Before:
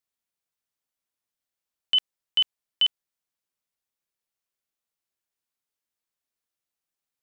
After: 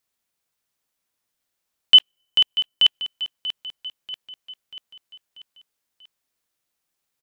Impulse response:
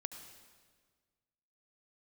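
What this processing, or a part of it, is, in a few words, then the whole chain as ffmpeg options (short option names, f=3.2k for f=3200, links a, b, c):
keyed gated reverb: -filter_complex "[0:a]asplit=3[a][b][c];[a]afade=t=out:st=1.96:d=0.02[d];[b]equalizer=f=2.5k:t=o:w=2.5:g=-5,afade=t=in:st=1.96:d=0.02,afade=t=out:st=2.85:d=0.02[e];[c]afade=t=in:st=2.85:d=0.02[f];[d][e][f]amix=inputs=3:normalize=0,asplit=3[g][h][i];[1:a]atrim=start_sample=2205[j];[h][j]afir=irnorm=-1:irlink=0[k];[i]apad=whole_len=318594[l];[k][l]sidechaingate=range=-41dB:threshold=-22dB:ratio=16:detection=peak,volume=-1.5dB[m];[g][m]amix=inputs=2:normalize=0,aecho=1:1:638|1276|1914|2552|3190:0.237|0.123|0.0641|0.0333|0.0173,volume=8.5dB"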